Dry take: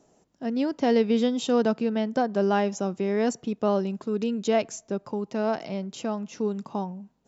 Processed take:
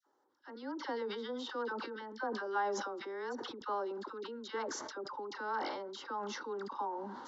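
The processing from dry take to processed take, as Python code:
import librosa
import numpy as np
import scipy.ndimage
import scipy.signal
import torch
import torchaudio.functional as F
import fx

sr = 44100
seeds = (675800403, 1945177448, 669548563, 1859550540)

y = fx.rider(x, sr, range_db=3, speed_s=2.0)
y = fx.cabinet(y, sr, low_hz=410.0, low_slope=12, high_hz=4200.0, hz=(440.0, 850.0, 1500.0, 2300.0), db=(-8, 5, 4, 4))
y = fx.fixed_phaser(y, sr, hz=670.0, stages=6)
y = fx.dispersion(y, sr, late='lows', ms=68.0, hz=1100.0)
y = fx.sustainer(y, sr, db_per_s=31.0)
y = y * 10.0 ** (-6.0 / 20.0)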